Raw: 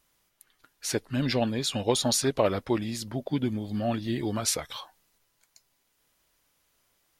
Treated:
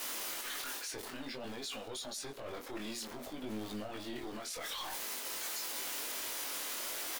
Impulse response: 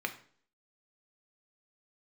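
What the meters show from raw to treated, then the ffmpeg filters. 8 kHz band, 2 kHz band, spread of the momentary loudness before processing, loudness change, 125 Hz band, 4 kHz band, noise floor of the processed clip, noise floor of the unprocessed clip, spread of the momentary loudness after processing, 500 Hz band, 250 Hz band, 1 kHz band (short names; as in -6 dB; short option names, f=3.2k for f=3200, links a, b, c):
-6.5 dB, -3.0 dB, 9 LU, -11.0 dB, -22.5 dB, -6.5 dB, -46 dBFS, -73 dBFS, 6 LU, -15.0 dB, -15.0 dB, -9.0 dB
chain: -filter_complex "[0:a]aeval=exprs='val(0)+0.5*0.0178*sgn(val(0))':c=same,highpass=f=270:w=0.5412,highpass=f=270:w=1.3066,areverse,acompressor=threshold=-34dB:ratio=8,areverse,alimiter=level_in=12dB:limit=-24dB:level=0:latency=1:release=52,volume=-12dB,acrossover=split=1900[a][b];[a]aeval=exprs='clip(val(0),-1,0.00316)':c=same[c];[c][b]amix=inputs=2:normalize=0,flanger=delay=18.5:depth=5:speed=0.55,asplit=2[d][e];[e]adelay=110.8,volume=-22dB,highshelf=f=4k:g=-2.49[f];[d][f]amix=inputs=2:normalize=0,volume=6dB"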